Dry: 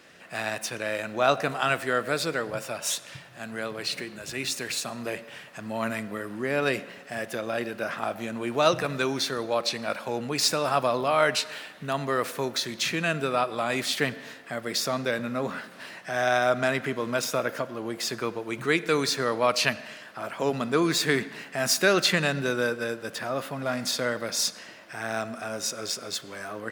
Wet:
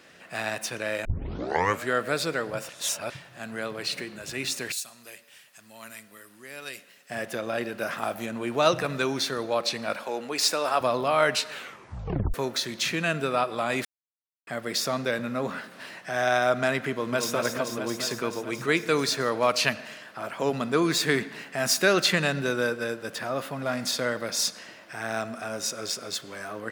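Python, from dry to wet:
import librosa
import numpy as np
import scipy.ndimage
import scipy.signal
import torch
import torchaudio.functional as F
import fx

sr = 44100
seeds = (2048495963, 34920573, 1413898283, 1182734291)

y = fx.pre_emphasis(x, sr, coefficient=0.9, at=(4.72, 7.1))
y = fx.high_shelf(y, sr, hz=7900.0, db=10.5, at=(7.79, 8.26))
y = fx.highpass(y, sr, hz=320.0, slope=12, at=(10.03, 10.81))
y = fx.echo_throw(y, sr, start_s=16.9, length_s=0.44, ms=220, feedback_pct=80, wet_db=-5.0)
y = fx.edit(y, sr, fx.tape_start(start_s=1.05, length_s=0.85),
    fx.reverse_span(start_s=2.69, length_s=0.41),
    fx.tape_stop(start_s=11.51, length_s=0.83),
    fx.silence(start_s=13.85, length_s=0.62), tone=tone)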